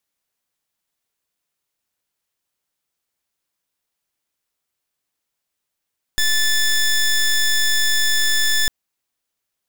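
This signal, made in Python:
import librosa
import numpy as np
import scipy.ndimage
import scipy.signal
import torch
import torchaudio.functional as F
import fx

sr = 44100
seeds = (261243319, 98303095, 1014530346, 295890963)

y = fx.pulse(sr, length_s=2.5, hz=1750.0, level_db=-16.5, duty_pct=15)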